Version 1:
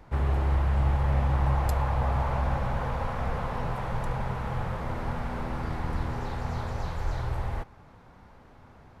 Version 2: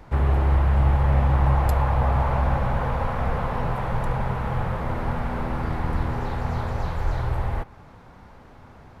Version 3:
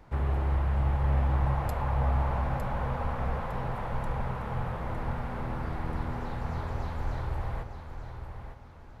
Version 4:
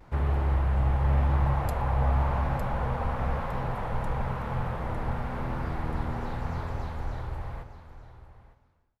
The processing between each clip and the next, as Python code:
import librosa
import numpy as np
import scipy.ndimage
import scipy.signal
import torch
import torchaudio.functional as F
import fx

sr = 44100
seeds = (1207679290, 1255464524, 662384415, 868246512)

y1 = fx.dynamic_eq(x, sr, hz=6300.0, q=0.74, threshold_db=-58.0, ratio=4.0, max_db=-6)
y1 = F.gain(torch.from_numpy(y1), 5.5).numpy()
y2 = fx.echo_feedback(y1, sr, ms=907, feedback_pct=31, wet_db=-8.5)
y2 = F.gain(torch.from_numpy(y2), -8.0).numpy()
y3 = fx.fade_out_tail(y2, sr, length_s=2.76)
y3 = fx.vibrato(y3, sr, rate_hz=0.95, depth_cents=45.0)
y3 = F.gain(torch.from_numpy(y3), 2.0).numpy()